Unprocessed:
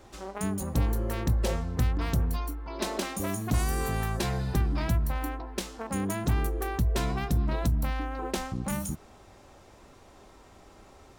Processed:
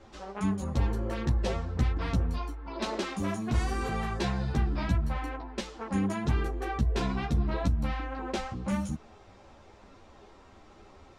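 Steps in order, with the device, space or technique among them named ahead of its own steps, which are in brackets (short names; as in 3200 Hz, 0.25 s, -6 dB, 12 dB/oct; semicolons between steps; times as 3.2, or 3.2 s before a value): string-machine ensemble chorus (ensemble effect; LPF 5200 Hz 12 dB/oct); gain +2.5 dB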